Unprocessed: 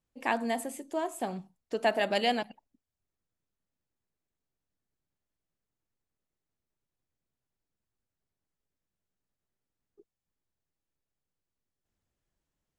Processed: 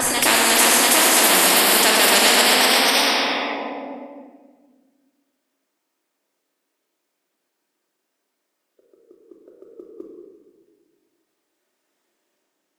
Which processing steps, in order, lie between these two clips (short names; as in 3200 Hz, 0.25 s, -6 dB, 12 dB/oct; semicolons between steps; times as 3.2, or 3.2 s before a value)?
HPF 290 Hz 24 dB/oct; gate -54 dBFS, range -23 dB; in parallel at -2.5 dB: limiter -20.5 dBFS, peak gain reduction 7 dB; on the sum: echoes that change speed 0.356 s, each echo +1 st, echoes 3; on a send: reverse echo 0.687 s -10 dB; on the sum: shoebox room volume 1600 m³, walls mixed, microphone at 2.7 m; spectral compressor 4:1; gain +2.5 dB